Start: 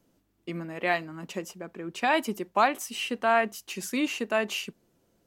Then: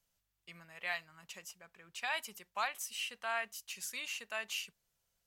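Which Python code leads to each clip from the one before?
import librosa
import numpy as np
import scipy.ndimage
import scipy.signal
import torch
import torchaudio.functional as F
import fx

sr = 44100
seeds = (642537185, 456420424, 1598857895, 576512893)

y = fx.tone_stack(x, sr, knobs='10-0-10')
y = F.gain(torch.from_numpy(y), -4.0).numpy()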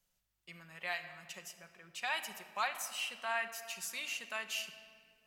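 y = fx.room_shoebox(x, sr, seeds[0], volume_m3=3900.0, walls='mixed', distance_m=0.99)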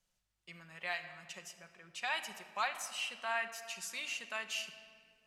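y = scipy.signal.sosfilt(scipy.signal.butter(2, 9600.0, 'lowpass', fs=sr, output='sos'), x)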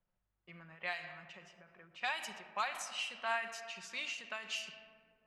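y = fx.env_lowpass(x, sr, base_hz=1400.0, full_db=-33.0)
y = fx.end_taper(y, sr, db_per_s=100.0)
y = F.gain(torch.from_numpy(y), 1.5).numpy()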